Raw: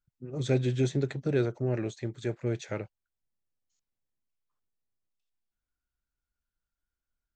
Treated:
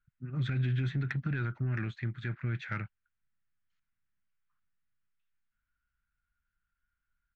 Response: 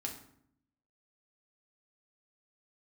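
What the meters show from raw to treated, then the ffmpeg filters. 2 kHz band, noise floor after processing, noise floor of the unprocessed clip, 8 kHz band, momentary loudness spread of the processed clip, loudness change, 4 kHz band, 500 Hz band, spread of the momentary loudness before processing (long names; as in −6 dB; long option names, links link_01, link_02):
+4.0 dB, below −85 dBFS, below −85 dBFS, below −20 dB, 8 LU, −3.0 dB, −4.5 dB, −17.5 dB, 10 LU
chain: -af "alimiter=level_in=0.5dB:limit=-24dB:level=0:latency=1:release=37,volume=-0.5dB,firequalizer=gain_entry='entry(180,0);entry(460,-21);entry(1400,7);entry(6400,-26)':delay=0.05:min_phase=1,asoftclip=type=tanh:threshold=-25.5dB,volume=4dB"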